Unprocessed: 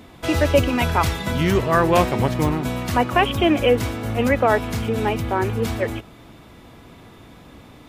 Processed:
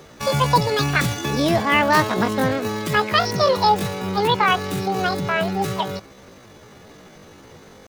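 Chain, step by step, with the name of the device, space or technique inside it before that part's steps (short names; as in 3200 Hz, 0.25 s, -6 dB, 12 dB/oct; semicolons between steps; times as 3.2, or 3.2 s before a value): chipmunk voice (pitch shift +9.5 st)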